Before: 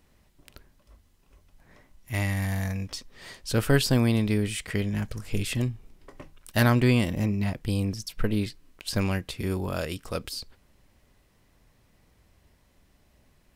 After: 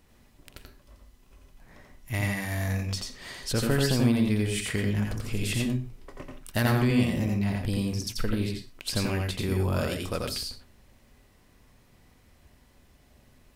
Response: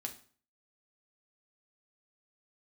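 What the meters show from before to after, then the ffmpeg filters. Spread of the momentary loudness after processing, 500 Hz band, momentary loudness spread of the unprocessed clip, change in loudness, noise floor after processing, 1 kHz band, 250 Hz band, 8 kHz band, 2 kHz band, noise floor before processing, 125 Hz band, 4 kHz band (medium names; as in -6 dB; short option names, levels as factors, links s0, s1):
12 LU, -1.0 dB, 14 LU, -0.5 dB, -60 dBFS, -1.5 dB, 0.0 dB, +1.5 dB, -1.0 dB, -64 dBFS, -1.0 dB, +1.0 dB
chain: -filter_complex "[0:a]acompressor=threshold=0.0355:ratio=2,asplit=2[s0][s1];[1:a]atrim=start_sample=2205,afade=t=out:st=0.18:d=0.01,atrim=end_sample=8379,adelay=86[s2];[s1][s2]afir=irnorm=-1:irlink=0,volume=1.06[s3];[s0][s3]amix=inputs=2:normalize=0,volume=1.19"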